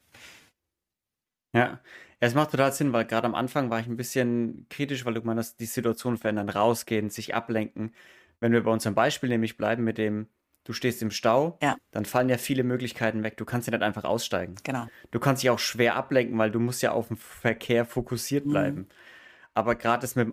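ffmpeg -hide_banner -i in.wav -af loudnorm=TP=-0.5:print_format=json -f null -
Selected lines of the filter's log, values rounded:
"input_i" : "-27.1",
"input_tp" : "-8.9",
"input_lra" : "2.2",
"input_thresh" : "-37.5",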